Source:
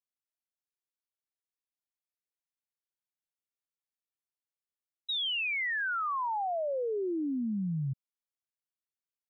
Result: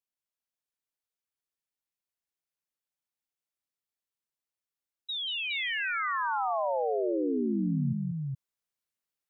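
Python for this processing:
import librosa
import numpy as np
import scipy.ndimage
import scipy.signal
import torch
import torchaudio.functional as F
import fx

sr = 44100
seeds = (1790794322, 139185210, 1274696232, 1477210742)

y = fx.rider(x, sr, range_db=10, speed_s=0.5)
y = fx.echo_multitap(y, sr, ms=(187, 415), db=(-6.0, -3.5))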